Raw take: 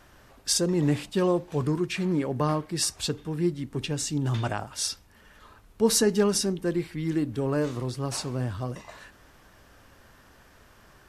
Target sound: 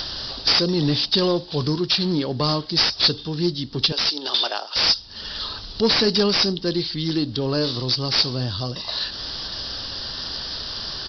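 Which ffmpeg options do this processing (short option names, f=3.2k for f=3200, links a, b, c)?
-filter_complex "[0:a]asettb=1/sr,asplit=3[a][b][c];[a]atrim=end=3.924[d];[b]atrim=start=3.92:end=4.87,asetpts=PTS-STARTPTS,afade=t=in:d=0.004:c=qsin,afade=t=out:st=0.946:d=0.004:c=qsin,highpass=f=400:w=0.5412,highpass=f=400:w=1.3066[e];[c]atrim=start=4.866[f];[d][e]acrossfade=d=0.004:c1=hsin:c2=qsin[g];[g][f]acrossfade=d=0.004:c1=qsin:c2=hsin,acompressor=mode=upward:threshold=-29dB:ratio=2.5,aexciter=amount=15.7:drive=7.3:freq=3.6k,asoftclip=type=tanh:threshold=-13dB,aresample=11025,aresample=44100,volume=4dB"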